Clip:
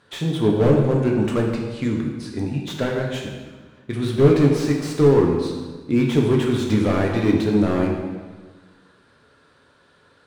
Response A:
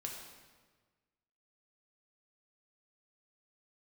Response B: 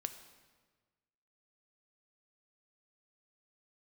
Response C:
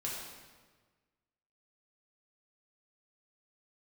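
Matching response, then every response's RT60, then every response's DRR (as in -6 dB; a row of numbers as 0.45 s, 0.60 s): A; 1.4 s, 1.4 s, 1.4 s; -0.5 dB, 8.5 dB, -5.0 dB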